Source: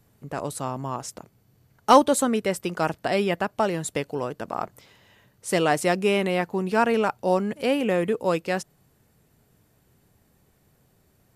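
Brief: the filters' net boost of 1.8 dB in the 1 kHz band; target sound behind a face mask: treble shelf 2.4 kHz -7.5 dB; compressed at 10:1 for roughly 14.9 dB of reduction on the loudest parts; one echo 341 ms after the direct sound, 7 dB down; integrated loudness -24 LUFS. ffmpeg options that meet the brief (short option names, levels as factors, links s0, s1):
-af "equalizer=f=1000:t=o:g=3.5,acompressor=threshold=0.0794:ratio=10,highshelf=f=2400:g=-7.5,aecho=1:1:341:0.447,volume=1.78"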